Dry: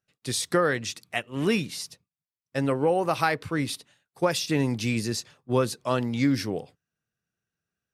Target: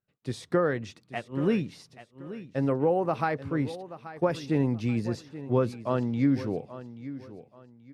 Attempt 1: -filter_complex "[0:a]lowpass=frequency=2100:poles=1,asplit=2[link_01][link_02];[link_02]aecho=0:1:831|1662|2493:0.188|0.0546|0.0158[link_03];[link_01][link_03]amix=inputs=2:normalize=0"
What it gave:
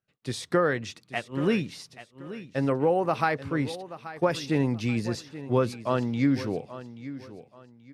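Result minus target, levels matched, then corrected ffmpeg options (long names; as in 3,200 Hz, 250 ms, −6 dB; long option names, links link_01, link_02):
2,000 Hz band +4.0 dB
-filter_complex "[0:a]lowpass=frequency=820:poles=1,asplit=2[link_01][link_02];[link_02]aecho=0:1:831|1662|2493:0.188|0.0546|0.0158[link_03];[link_01][link_03]amix=inputs=2:normalize=0"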